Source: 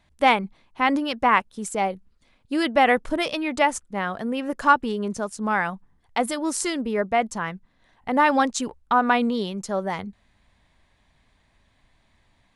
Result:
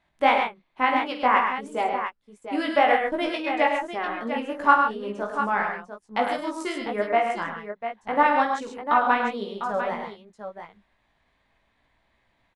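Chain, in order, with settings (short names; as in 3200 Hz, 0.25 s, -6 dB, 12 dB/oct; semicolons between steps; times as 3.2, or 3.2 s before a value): tone controls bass -8 dB, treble -10 dB; transient shaper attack +3 dB, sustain -9 dB; chorus 2.8 Hz, delay 17 ms, depth 3 ms; tapped delay 49/103/134/698 ms -9/-7.5/-7.5/-9 dB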